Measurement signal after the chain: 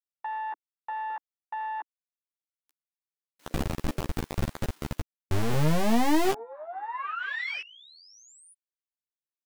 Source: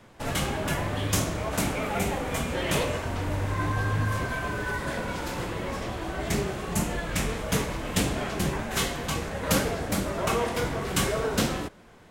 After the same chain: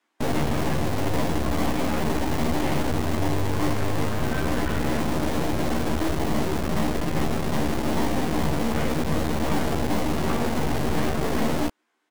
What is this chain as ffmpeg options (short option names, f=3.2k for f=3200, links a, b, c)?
-filter_complex "[0:a]acrossover=split=2500[a][b];[b]acompressor=threshold=-39dB:ratio=4:attack=1:release=60[c];[a][c]amix=inputs=2:normalize=0,afwtdn=0.0251,lowshelf=f=390:t=q:w=3:g=10,asplit=2[d][e];[e]alimiter=limit=-12dB:level=0:latency=1:release=384,volume=2.5dB[f];[d][f]amix=inputs=2:normalize=0,aeval=exprs='(tanh(7.94*val(0)+0.7)-tanh(0.7))/7.94':c=same,acrossover=split=500|3500[g][h][i];[g]acrusher=bits=3:mix=0:aa=0.000001[j];[j][h][i]amix=inputs=3:normalize=0,asplit=2[k][l];[l]adelay=13,volume=-4dB[m];[k][m]amix=inputs=2:normalize=0,volume=-4dB"